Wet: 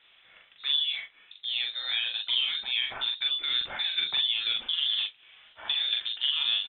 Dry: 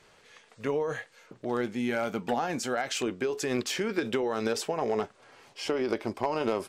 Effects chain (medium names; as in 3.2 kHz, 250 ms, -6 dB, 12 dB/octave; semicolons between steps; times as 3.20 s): three-band isolator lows -15 dB, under 200 Hz, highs -14 dB, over 2.7 kHz; frequency inversion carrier 3.9 kHz; doubling 42 ms -3 dB